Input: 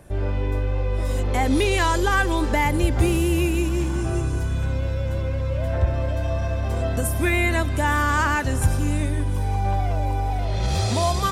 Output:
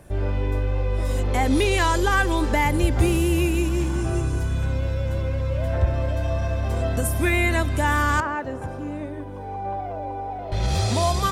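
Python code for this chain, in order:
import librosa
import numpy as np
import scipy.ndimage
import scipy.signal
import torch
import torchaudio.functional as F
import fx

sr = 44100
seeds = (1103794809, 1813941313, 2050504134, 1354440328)

y = fx.bandpass_q(x, sr, hz=550.0, q=0.87, at=(8.2, 10.52))
y = fx.quant_dither(y, sr, seeds[0], bits=12, dither='none')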